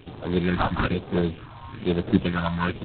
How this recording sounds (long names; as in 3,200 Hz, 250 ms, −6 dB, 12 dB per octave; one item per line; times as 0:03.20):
aliases and images of a low sample rate 2,000 Hz, jitter 0%
phaser sweep stages 4, 1.1 Hz, lowest notch 400–2,700 Hz
G.726